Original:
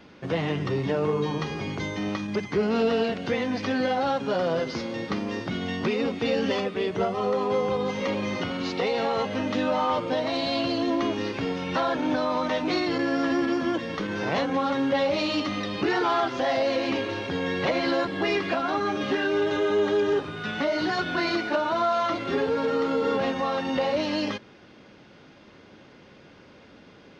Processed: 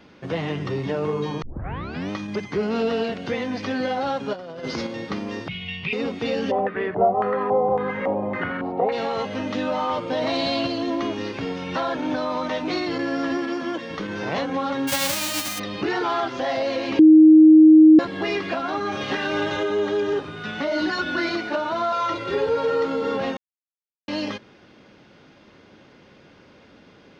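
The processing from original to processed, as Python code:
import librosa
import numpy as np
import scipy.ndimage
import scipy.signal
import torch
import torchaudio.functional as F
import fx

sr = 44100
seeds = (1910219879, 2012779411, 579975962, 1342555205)

y = fx.over_compress(x, sr, threshold_db=-30.0, ratio=-0.5, at=(4.33, 4.87))
y = fx.curve_eq(y, sr, hz=(170.0, 270.0, 410.0, 590.0, 1000.0, 1500.0, 2500.0, 4100.0, 9200.0), db=(0, -25, -15, -16, -11, -14, 12, -4, -24), at=(5.48, 5.93))
y = fx.filter_lfo_lowpass(y, sr, shape='square', hz=1.8, low_hz=760.0, high_hz=1700.0, q=4.1, at=(6.5, 8.91), fade=0.02)
y = fx.env_flatten(y, sr, amount_pct=100, at=(10.1, 10.67))
y = fx.highpass(y, sr, hz=250.0, slope=6, at=(13.37, 13.91))
y = fx.envelope_flatten(y, sr, power=0.1, at=(14.87, 15.58), fade=0.02)
y = fx.spec_clip(y, sr, under_db=12, at=(18.91, 19.62), fade=0.02)
y = fx.comb(y, sr, ms=3.5, depth=0.65, at=(20.71, 21.29))
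y = fx.comb(y, sr, ms=2.1, depth=0.65, at=(21.92, 22.85))
y = fx.edit(y, sr, fx.tape_start(start_s=1.42, length_s=0.68),
    fx.bleep(start_s=16.99, length_s=1.0, hz=313.0, db=-6.5),
    fx.silence(start_s=23.37, length_s=0.71), tone=tone)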